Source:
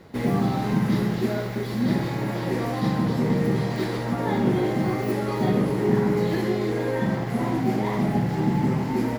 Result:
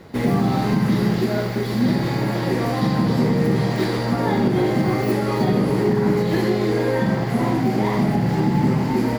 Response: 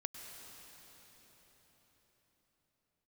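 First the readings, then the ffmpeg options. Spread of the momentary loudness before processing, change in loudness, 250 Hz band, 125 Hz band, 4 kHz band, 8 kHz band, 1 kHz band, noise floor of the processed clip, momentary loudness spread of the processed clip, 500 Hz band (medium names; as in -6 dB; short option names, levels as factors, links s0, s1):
4 LU, +4.0 dB, +4.0 dB, +4.5 dB, +6.0 dB, +4.5 dB, +4.5 dB, -24 dBFS, 3 LU, +4.0 dB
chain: -filter_complex "[0:a]alimiter=limit=0.188:level=0:latency=1:release=126,asplit=2[s0][s1];[s1]lowpass=f=4700:t=q:w=13[s2];[1:a]atrim=start_sample=2205,adelay=86[s3];[s2][s3]afir=irnorm=-1:irlink=0,volume=0.158[s4];[s0][s4]amix=inputs=2:normalize=0,volume=1.78"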